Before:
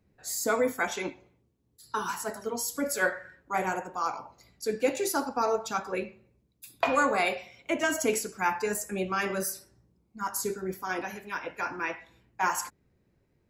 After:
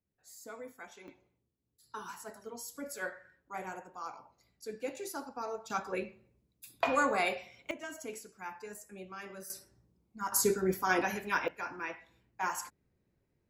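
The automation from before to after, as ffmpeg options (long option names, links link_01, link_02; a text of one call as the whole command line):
ffmpeg -i in.wav -af "asetnsamples=nb_out_samples=441:pad=0,asendcmd='1.08 volume volume -12dB;5.7 volume volume -4dB;7.71 volume volume -16dB;9.5 volume volume -4dB;10.32 volume volume 3.5dB;11.48 volume volume -7dB',volume=-20dB" out.wav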